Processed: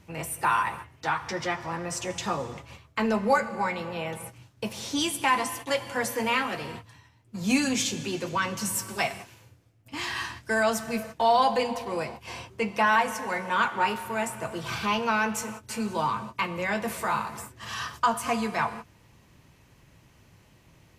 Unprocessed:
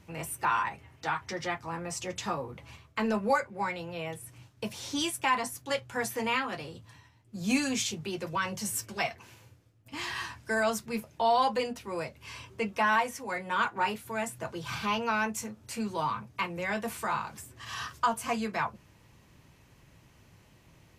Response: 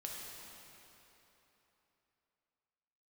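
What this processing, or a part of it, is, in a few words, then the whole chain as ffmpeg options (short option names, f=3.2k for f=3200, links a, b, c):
keyed gated reverb: -filter_complex "[0:a]asplit=3[a][b][c];[1:a]atrim=start_sample=2205[d];[b][d]afir=irnorm=-1:irlink=0[e];[c]apad=whole_len=925418[f];[e][f]sidechaingate=range=-33dB:threshold=-46dB:ratio=16:detection=peak,volume=-6dB[g];[a][g]amix=inputs=2:normalize=0,volume=1.5dB"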